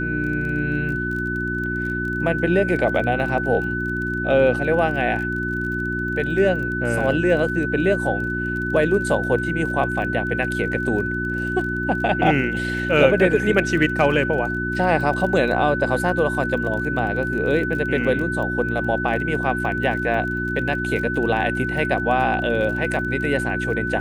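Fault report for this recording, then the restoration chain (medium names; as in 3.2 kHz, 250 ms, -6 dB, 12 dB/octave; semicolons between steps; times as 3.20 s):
crackle 25 per s -30 dBFS
hum 60 Hz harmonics 6 -27 dBFS
whine 1.5 kHz -25 dBFS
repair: de-click; de-hum 60 Hz, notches 6; band-stop 1.5 kHz, Q 30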